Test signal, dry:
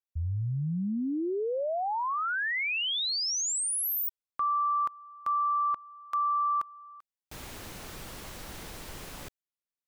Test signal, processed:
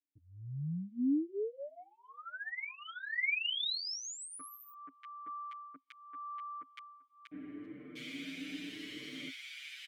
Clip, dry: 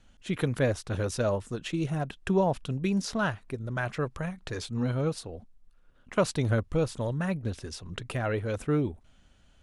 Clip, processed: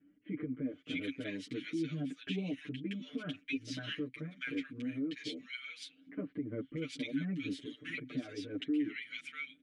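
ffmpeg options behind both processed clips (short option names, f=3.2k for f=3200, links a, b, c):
-filter_complex "[0:a]highpass=f=160:p=1,aecho=1:1:6.7:0.99,acrossover=split=1400[a][b];[b]adelay=640[c];[a][c]amix=inputs=2:normalize=0,asplit=2[d][e];[e]acompressor=threshold=-33dB:ratio=6:release=97:knee=6:detection=rms,volume=1dB[f];[d][f]amix=inputs=2:normalize=0,asplit=3[g][h][i];[g]bandpass=f=270:t=q:w=8,volume=0dB[j];[h]bandpass=f=2.29k:t=q:w=8,volume=-6dB[k];[i]bandpass=f=3.01k:t=q:w=8,volume=-9dB[l];[j][k][l]amix=inputs=3:normalize=0,lowshelf=f=360:g=-3,alimiter=level_in=10dB:limit=-24dB:level=0:latency=1:release=230,volume=-10dB,asplit=2[m][n];[n]adelay=7.4,afreqshift=0.81[o];[m][o]amix=inputs=2:normalize=1,volume=9dB"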